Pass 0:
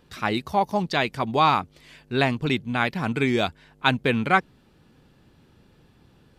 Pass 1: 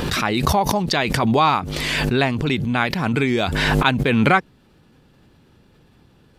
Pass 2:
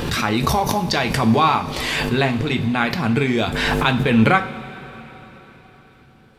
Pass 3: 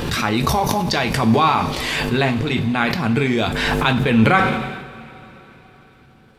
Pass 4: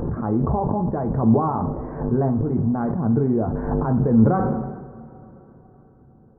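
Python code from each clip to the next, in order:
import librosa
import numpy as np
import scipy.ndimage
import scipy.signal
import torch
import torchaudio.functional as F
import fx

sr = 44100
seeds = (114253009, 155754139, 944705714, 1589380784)

y1 = fx.pre_swell(x, sr, db_per_s=20.0)
y1 = y1 * librosa.db_to_amplitude(2.0)
y2 = fx.rev_double_slope(y1, sr, seeds[0], early_s=0.3, late_s=4.3, knee_db=-18, drr_db=5.0)
y2 = y2 * librosa.db_to_amplitude(-1.0)
y3 = fx.sustainer(y2, sr, db_per_s=45.0)
y4 = scipy.ndimage.gaussian_filter1d(y3, 10.0, mode='constant')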